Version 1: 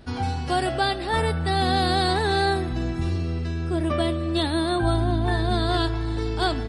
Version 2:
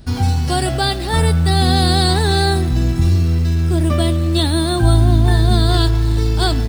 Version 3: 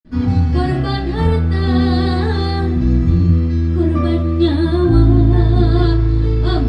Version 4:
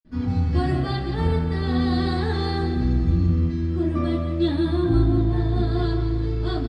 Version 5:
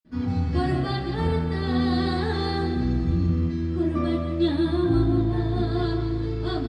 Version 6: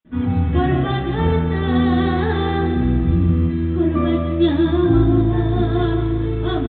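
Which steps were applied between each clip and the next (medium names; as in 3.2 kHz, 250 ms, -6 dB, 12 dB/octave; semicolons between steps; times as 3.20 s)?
tone controls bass +10 dB, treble +11 dB; in parallel at -9 dB: bit crusher 5-bit
in parallel at -4 dB: hard clipper -11 dBFS, distortion -13 dB; on the sum: reverberation RT60 0.35 s, pre-delay 46 ms; trim -3 dB
level rider; on a send: feedback delay 175 ms, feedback 48%, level -9 dB; on the sum: trim -9 dB
high-pass 100 Hz 6 dB/octave
resampled via 8 kHz; trim +6.5 dB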